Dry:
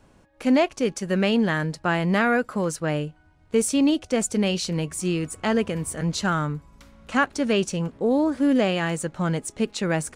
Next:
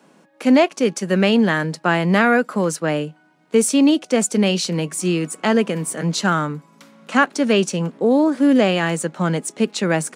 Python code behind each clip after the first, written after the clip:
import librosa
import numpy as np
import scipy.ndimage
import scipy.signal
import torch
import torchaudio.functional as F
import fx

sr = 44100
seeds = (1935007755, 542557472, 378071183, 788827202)

y = scipy.signal.sosfilt(scipy.signal.butter(8, 160.0, 'highpass', fs=sr, output='sos'), x)
y = F.gain(torch.from_numpy(y), 5.5).numpy()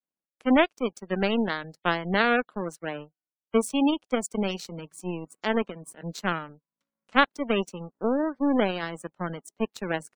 y = fx.power_curve(x, sr, exponent=2.0)
y = fx.spec_gate(y, sr, threshold_db=-25, keep='strong')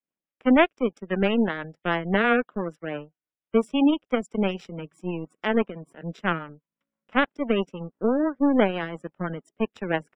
y = fx.rotary(x, sr, hz=6.0)
y = scipy.signal.savgol_filter(y, 25, 4, mode='constant')
y = F.gain(torch.from_numpy(y), 4.5).numpy()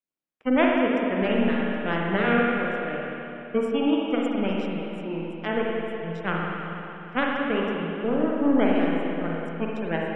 y = fx.rev_spring(x, sr, rt60_s=3.1, pass_ms=(42, 59), chirp_ms=75, drr_db=-3.0)
y = F.gain(torch.from_numpy(y), -4.5).numpy()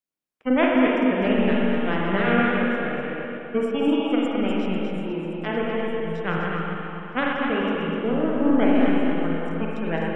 y = fx.reverse_delay(x, sr, ms=125, wet_db=-5.5)
y = y + 10.0 ** (-7.0 / 20.0) * np.pad(y, (int(252 * sr / 1000.0), 0))[:len(y)]